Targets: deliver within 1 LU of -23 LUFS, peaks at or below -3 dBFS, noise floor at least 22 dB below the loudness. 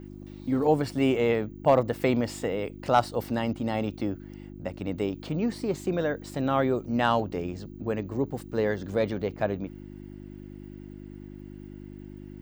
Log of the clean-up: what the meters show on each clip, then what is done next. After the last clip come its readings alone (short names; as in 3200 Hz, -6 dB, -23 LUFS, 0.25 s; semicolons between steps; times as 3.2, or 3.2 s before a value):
hum 50 Hz; harmonics up to 350 Hz; hum level -40 dBFS; loudness -28.0 LUFS; peak -10.0 dBFS; loudness target -23.0 LUFS
-> de-hum 50 Hz, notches 7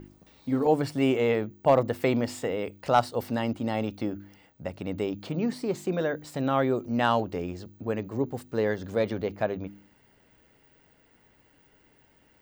hum none; loudness -28.0 LUFS; peak -10.0 dBFS; loudness target -23.0 LUFS
-> gain +5 dB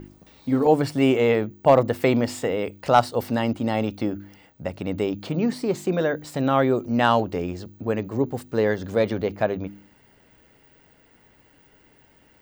loudness -23.0 LUFS; peak -5.0 dBFS; noise floor -58 dBFS